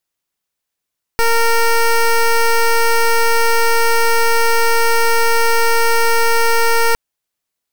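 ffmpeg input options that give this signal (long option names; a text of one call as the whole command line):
ffmpeg -f lavfi -i "aevalsrc='0.251*(2*lt(mod(461*t,1),0.13)-1)':duration=5.76:sample_rate=44100" out.wav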